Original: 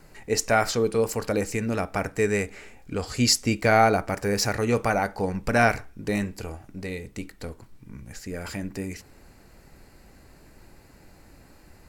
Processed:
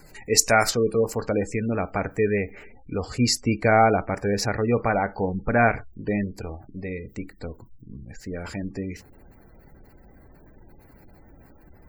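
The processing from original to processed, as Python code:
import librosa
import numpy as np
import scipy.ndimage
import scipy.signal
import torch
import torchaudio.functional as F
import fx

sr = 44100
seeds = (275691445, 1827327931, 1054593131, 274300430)

y = fx.high_shelf(x, sr, hz=2800.0, db=fx.steps((0.0, 8.5), (0.69, -5.5)))
y = fx.dmg_noise_colour(y, sr, seeds[0], colour='violet', level_db=-60.0)
y = fx.spec_gate(y, sr, threshold_db=-25, keep='strong')
y = y * librosa.db_to_amplitude(1.5)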